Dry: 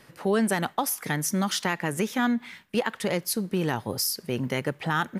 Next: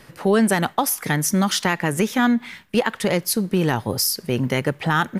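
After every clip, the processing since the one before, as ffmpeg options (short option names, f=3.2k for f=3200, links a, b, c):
-af "lowshelf=f=63:g=10,volume=6dB"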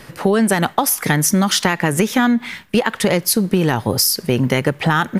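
-af "acompressor=threshold=-19dB:ratio=6,volume=7.5dB"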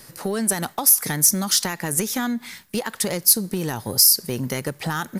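-filter_complex "[0:a]asplit=2[a][b];[b]asoftclip=type=hard:threshold=-9.5dB,volume=-4dB[c];[a][c]amix=inputs=2:normalize=0,aexciter=amount=4.6:drive=2.9:freq=4.2k,volume=-14dB"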